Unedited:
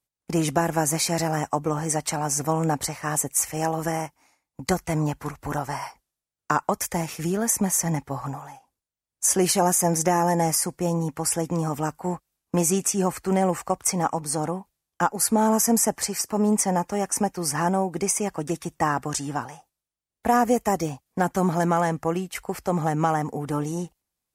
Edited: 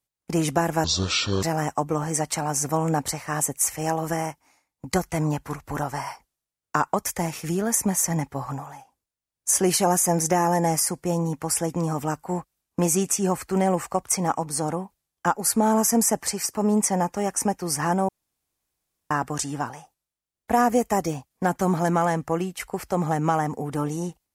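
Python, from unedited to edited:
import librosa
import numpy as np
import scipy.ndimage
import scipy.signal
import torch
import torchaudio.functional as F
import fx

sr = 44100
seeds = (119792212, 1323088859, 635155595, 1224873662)

y = fx.edit(x, sr, fx.speed_span(start_s=0.84, length_s=0.34, speed=0.58),
    fx.room_tone_fill(start_s=17.84, length_s=1.02), tone=tone)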